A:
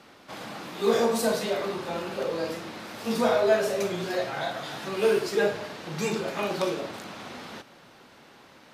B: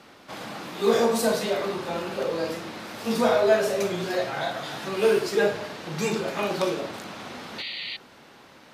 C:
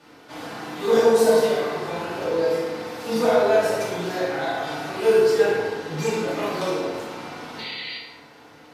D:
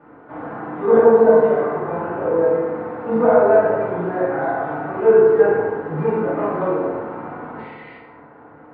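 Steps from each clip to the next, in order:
painted sound noise, 7.58–7.97 s, 1.8–4.7 kHz -36 dBFS; trim +2 dB
FDN reverb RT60 1.4 s, low-frequency decay 0.75×, high-frequency decay 0.5×, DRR -8 dB; trim -6.5 dB
low-pass 1.5 kHz 24 dB/octave; trim +5 dB

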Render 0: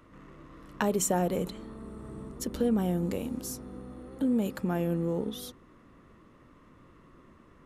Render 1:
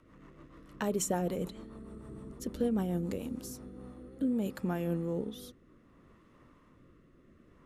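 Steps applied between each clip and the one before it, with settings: rotary cabinet horn 6.7 Hz, later 0.65 Hz, at 3.24 s; trim -2.5 dB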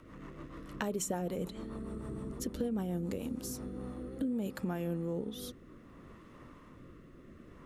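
compression 2.5:1, threshold -44 dBFS, peak gain reduction 12 dB; trim +7 dB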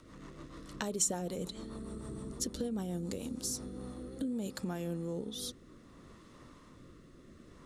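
high-order bell 5.9 kHz +10 dB; trim -2 dB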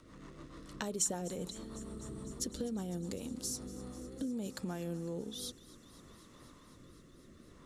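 thinning echo 252 ms, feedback 84%, high-pass 940 Hz, level -18.5 dB; trim -2 dB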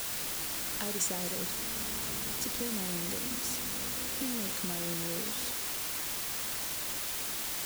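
word length cut 6-bit, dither triangular

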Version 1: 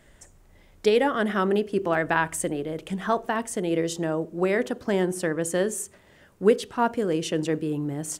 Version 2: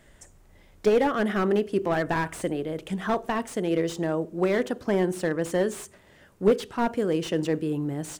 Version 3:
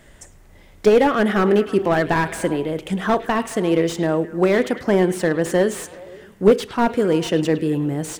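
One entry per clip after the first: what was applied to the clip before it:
slew-rate limiter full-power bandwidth 84 Hz
repeats whose band climbs or falls 105 ms, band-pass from 3 kHz, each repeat -0.7 oct, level -10 dB; trim +7 dB

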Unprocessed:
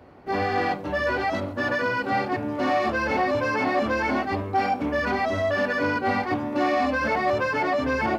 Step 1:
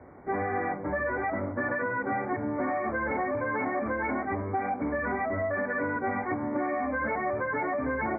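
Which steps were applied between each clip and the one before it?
Chebyshev low-pass 2.3 kHz, order 10; compression 10:1, threshold -26 dBFS, peak gain reduction 7.5 dB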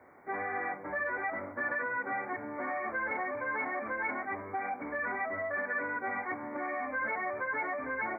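tilt EQ +4 dB/octave; trim -4 dB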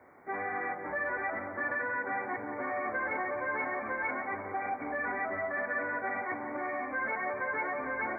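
filtered feedback delay 178 ms, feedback 73%, low-pass 2 kHz, level -8.5 dB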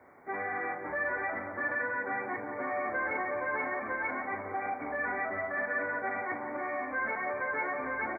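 doubling 39 ms -10.5 dB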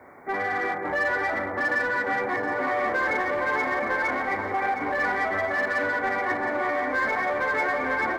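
in parallel at -4.5 dB: hard clipper -34 dBFS, distortion -9 dB; on the sum: echo whose repeats swap between lows and highs 358 ms, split 1 kHz, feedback 81%, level -8.5 dB; trim +4.5 dB

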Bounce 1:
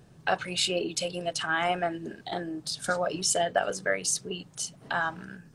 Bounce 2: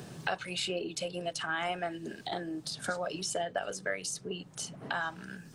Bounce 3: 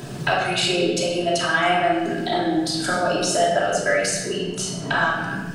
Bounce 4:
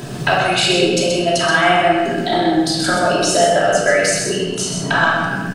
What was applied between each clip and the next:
three bands compressed up and down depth 70%; trim -6.5 dB
simulated room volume 1000 m³, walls mixed, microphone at 2.9 m; trim +8 dB
delay 128 ms -6 dB; trim +5 dB

